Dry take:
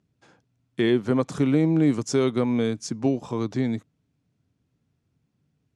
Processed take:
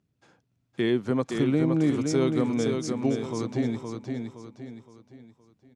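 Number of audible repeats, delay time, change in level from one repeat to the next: 4, 0.517 s, -8.0 dB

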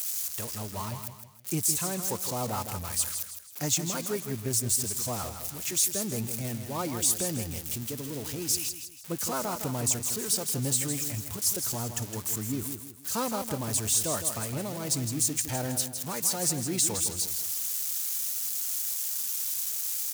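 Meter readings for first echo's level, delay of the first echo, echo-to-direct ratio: -8.5 dB, 0.161 s, -8.0 dB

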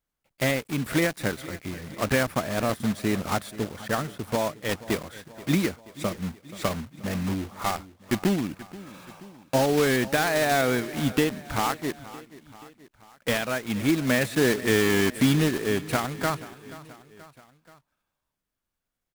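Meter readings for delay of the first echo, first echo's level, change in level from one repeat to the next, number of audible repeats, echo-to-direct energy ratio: 0.48 s, -18.0 dB, -4.5 dB, 3, -16.5 dB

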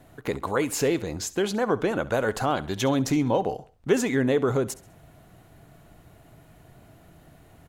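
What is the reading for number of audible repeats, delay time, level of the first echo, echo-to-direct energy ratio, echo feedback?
2, 67 ms, -18.5 dB, -18.0 dB, 38%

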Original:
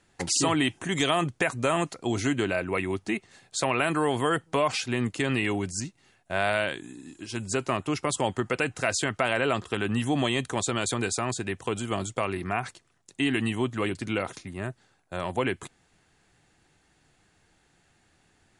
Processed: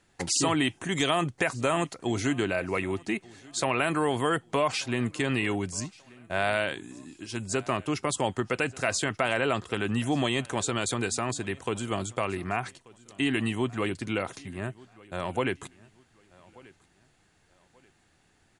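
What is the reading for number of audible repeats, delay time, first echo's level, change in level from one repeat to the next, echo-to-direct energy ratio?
2, 1.185 s, -23.5 dB, -10.0 dB, -23.0 dB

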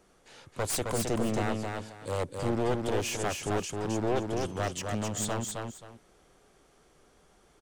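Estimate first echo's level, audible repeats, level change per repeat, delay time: -4.0 dB, 2, -12.5 dB, 0.265 s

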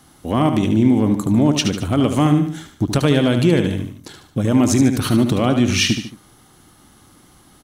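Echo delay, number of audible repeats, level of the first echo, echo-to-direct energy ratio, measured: 74 ms, 3, -8.0 dB, -7.0 dB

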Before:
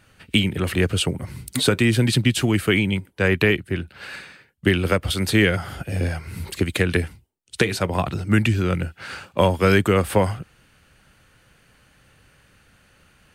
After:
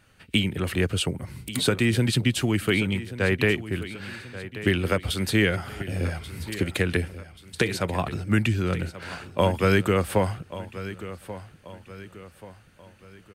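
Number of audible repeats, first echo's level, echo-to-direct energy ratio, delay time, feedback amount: 3, -14.5 dB, -13.5 dB, 1.134 s, 42%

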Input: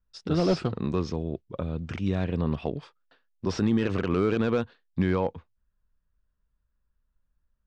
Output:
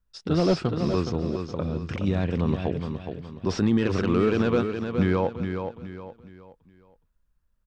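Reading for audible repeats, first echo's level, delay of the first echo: 4, -7.0 dB, 0.418 s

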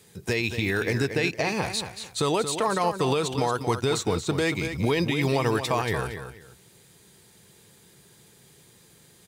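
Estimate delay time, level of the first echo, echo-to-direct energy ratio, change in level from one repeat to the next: 0.23 s, -9.0 dB, -9.0 dB, -12.5 dB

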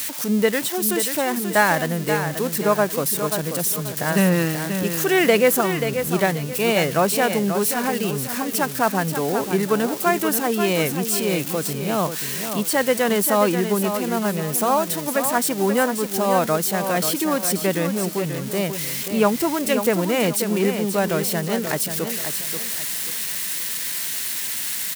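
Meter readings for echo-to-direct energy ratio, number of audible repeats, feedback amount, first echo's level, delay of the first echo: -7.5 dB, 3, 32%, -8.0 dB, 0.534 s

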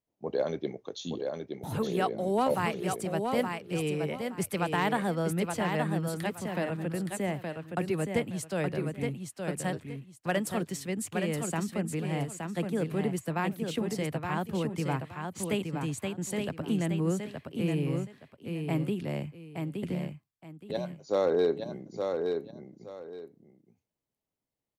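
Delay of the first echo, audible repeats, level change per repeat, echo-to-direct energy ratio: 0.87 s, 2, -12.5 dB, -5.0 dB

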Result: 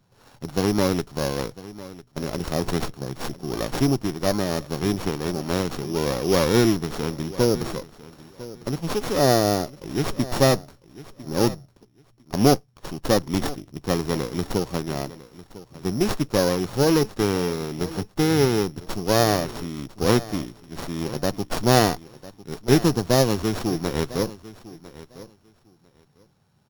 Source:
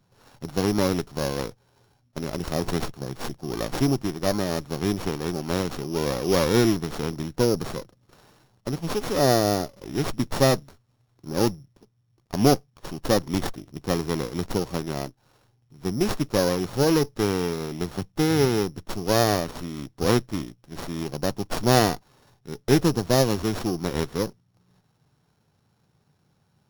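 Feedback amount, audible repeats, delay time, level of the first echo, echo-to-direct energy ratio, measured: 17%, 2, 1.001 s, -17.5 dB, -17.5 dB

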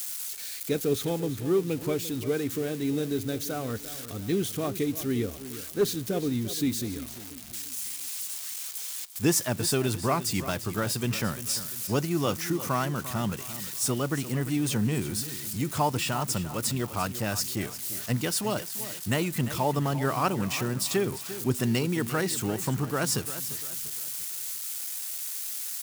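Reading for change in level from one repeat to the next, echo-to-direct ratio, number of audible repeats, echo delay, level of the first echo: -7.5 dB, -12.5 dB, 3, 0.346 s, -13.5 dB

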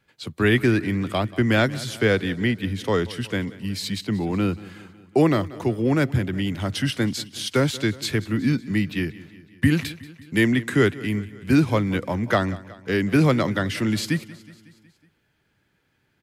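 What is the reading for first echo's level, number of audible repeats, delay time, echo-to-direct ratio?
-19.0 dB, 4, 0.184 s, -17.0 dB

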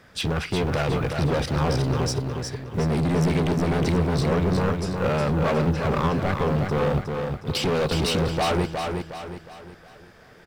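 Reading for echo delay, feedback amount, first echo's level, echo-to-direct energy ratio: 0.363 s, 42%, -5.0 dB, -4.0 dB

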